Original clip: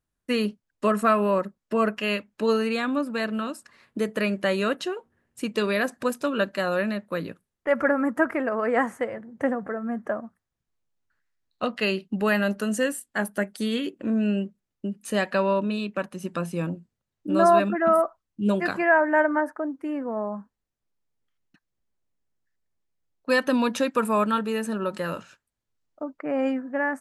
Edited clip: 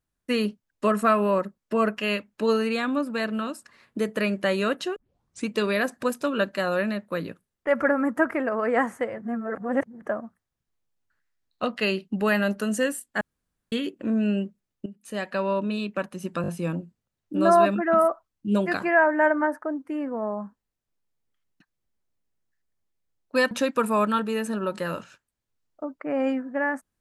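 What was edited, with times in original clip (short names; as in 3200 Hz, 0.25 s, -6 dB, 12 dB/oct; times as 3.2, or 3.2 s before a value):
4.96 tape start 0.51 s
9.22–10.02 reverse
13.21–13.72 room tone
14.86–15.81 fade in, from -13 dB
16.42 stutter 0.02 s, 4 plays
23.45–23.7 cut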